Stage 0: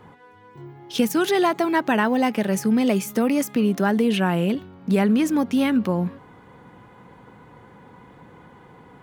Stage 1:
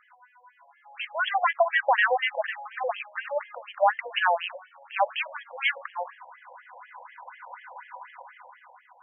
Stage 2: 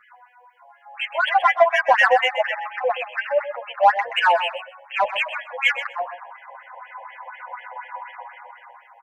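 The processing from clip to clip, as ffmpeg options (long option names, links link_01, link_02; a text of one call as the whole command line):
ffmpeg -i in.wav -af "dynaudnorm=framelen=230:gausssize=9:maxgain=14dB,asubboost=boost=11.5:cutoff=120,afftfilt=real='re*between(b*sr/1024,670*pow(2400/670,0.5+0.5*sin(2*PI*4.1*pts/sr))/1.41,670*pow(2400/670,0.5+0.5*sin(2*PI*4.1*pts/sr))*1.41)':imag='im*between(b*sr/1024,670*pow(2400/670,0.5+0.5*sin(2*PI*4.1*pts/sr))/1.41,670*pow(2400/670,0.5+0.5*sin(2*PI*4.1*pts/sr))*1.41)':win_size=1024:overlap=0.75,volume=-1dB" out.wav
ffmpeg -i in.wav -filter_complex "[0:a]asplit=2[link_01][link_02];[link_02]asoftclip=type=tanh:threshold=-22.5dB,volume=-6dB[link_03];[link_01][link_03]amix=inputs=2:normalize=0,aecho=1:1:127|254:0.282|0.0451,asplit=2[link_04][link_05];[link_05]adelay=7.8,afreqshift=-0.37[link_06];[link_04][link_06]amix=inputs=2:normalize=1,volume=6.5dB" out.wav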